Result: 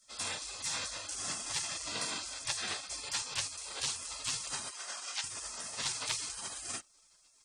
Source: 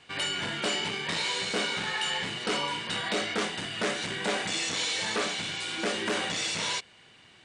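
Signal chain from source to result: spectral gate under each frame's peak -20 dB weak; 4.71–5.24 s: band-pass 670–6800 Hz; trim +6 dB

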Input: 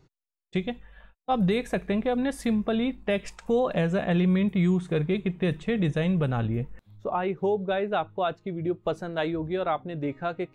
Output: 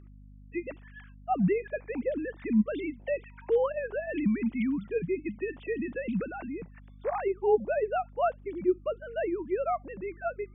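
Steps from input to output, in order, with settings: formants replaced by sine waves; hum 50 Hz, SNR 20 dB; tape noise reduction on one side only encoder only; trim -4 dB

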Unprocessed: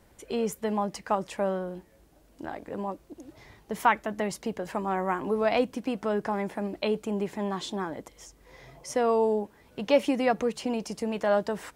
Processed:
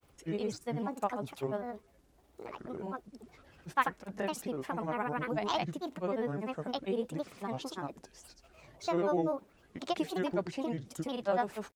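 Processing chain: granulator, pitch spread up and down by 7 st; trim -5 dB

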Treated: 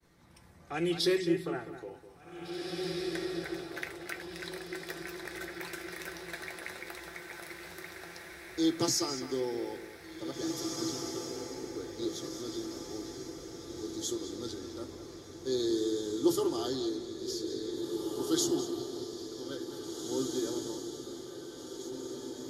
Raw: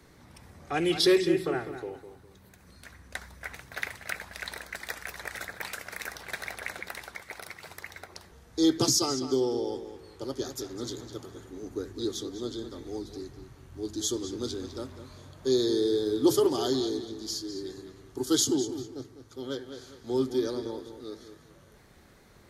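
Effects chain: expander -53 dBFS; feedback comb 170 Hz, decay 0.15 s, harmonics all, mix 70%; echo that smears into a reverb 1970 ms, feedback 50%, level -5 dB

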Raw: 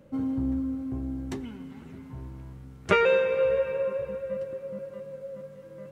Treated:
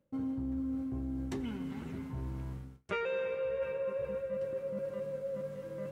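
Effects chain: reverse; compression 5:1, threshold -38 dBFS, peak gain reduction 19.5 dB; reverse; gate with hold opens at -44 dBFS; trim +3.5 dB

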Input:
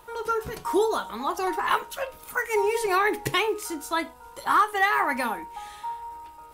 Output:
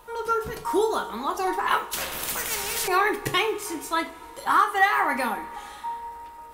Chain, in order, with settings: two-slope reverb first 0.34 s, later 3.6 s, from -20 dB, DRR 6 dB; 1.93–2.88 s: spectrum-flattening compressor 4:1

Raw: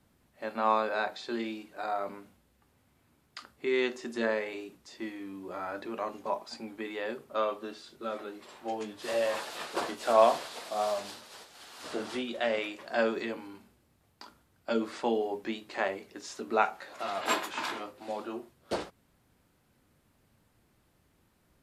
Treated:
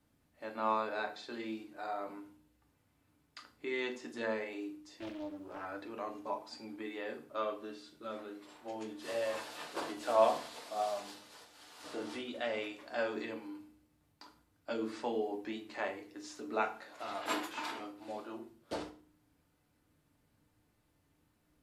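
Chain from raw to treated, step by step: FDN reverb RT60 0.42 s, low-frequency decay 1.6×, high-frequency decay 0.9×, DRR 4.5 dB; 4.99–5.66 s: loudspeaker Doppler distortion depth 0.68 ms; trim -7.5 dB

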